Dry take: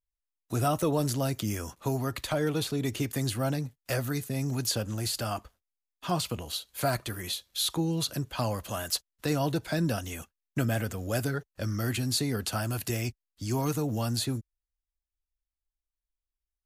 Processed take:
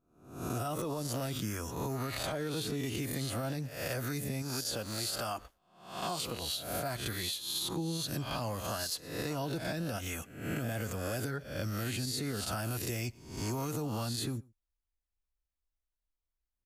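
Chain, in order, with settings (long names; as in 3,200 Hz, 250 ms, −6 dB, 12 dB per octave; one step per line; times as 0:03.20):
peak hold with a rise ahead of every peak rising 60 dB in 0.62 s
0:04.42–0:06.42: parametric band 110 Hz −7.5 dB 2.7 octaves
slap from a distant wall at 20 metres, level −29 dB
brickwall limiter −20.5 dBFS, peak gain reduction 10 dB
downward compressor, threshold −31 dBFS, peak gain reduction 6.5 dB
one half of a high-frequency compander decoder only
level −1 dB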